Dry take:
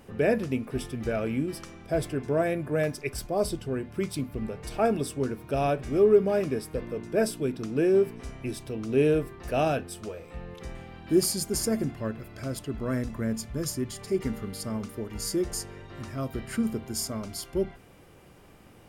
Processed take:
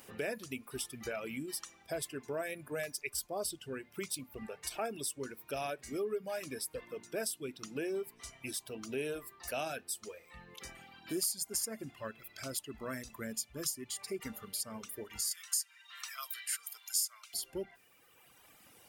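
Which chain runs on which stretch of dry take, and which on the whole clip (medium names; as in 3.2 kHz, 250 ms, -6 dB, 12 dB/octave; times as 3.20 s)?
15.31–17.34 s: high-pass 1.1 kHz 24 dB/octave + treble shelf 2.2 kHz +7.5 dB
whole clip: reverb removal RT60 1.7 s; tilt EQ +3.5 dB/octave; compression 2.5:1, threshold -34 dBFS; trim -3 dB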